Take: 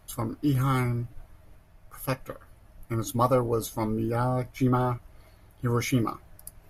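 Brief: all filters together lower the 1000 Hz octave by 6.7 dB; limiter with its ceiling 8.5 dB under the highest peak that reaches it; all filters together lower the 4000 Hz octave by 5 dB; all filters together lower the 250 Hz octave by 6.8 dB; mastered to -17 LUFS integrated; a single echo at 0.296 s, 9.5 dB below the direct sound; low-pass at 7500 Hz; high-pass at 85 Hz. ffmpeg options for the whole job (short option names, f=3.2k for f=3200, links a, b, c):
-af "highpass=85,lowpass=7.5k,equalizer=f=250:t=o:g=-8,equalizer=f=1k:t=o:g=-8,equalizer=f=4k:t=o:g=-6,alimiter=level_in=1dB:limit=-24dB:level=0:latency=1,volume=-1dB,aecho=1:1:296:0.335,volume=18dB"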